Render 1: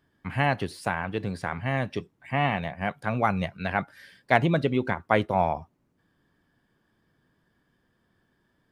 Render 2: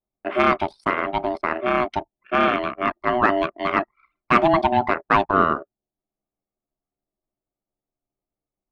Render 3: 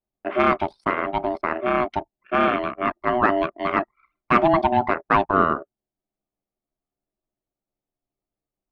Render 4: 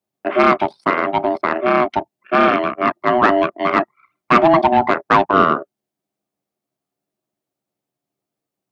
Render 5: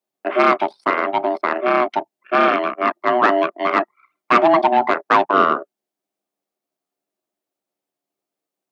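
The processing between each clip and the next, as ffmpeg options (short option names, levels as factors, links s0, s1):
-filter_complex "[0:a]aeval=exprs='val(0)*sin(2*PI*490*n/s)':c=same,anlmdn=0.1,asplit=2[s0][s1];[s1]highpass=f=720:p=1,volume=5.01,asoftclip=type=tanh:threshold=0.596[s2];[s0][s2]amix=inputs=2:normalize=0,lowpass=f=1400:p=1,volume=0.501,volume=1.88"
-af "highshelf=f=3600:g=-9"
-filter_complex "[0:a]acrossover=split=110[s0][s1];[s0]aeval=exprs='val(0)*sin(2*PI*150*n/s)':c=same[s2];[s1]acontrast=78[s3];[s2][s3]amix=inputs=2:normalize=0"
-af "highpass=290,volume=0.891"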